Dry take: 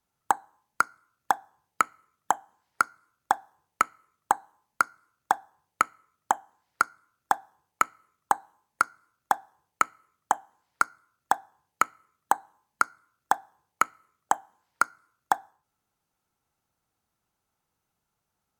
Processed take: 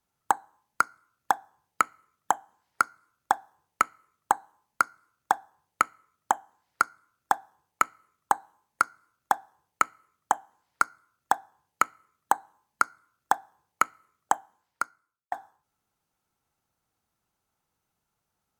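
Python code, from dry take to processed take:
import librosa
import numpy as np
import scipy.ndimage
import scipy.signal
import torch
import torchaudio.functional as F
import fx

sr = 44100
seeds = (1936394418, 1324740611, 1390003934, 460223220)

y = fx.edit(x, sr, fx.fade_out_span(start_s=14.33, length_s=0.99), tone=tone)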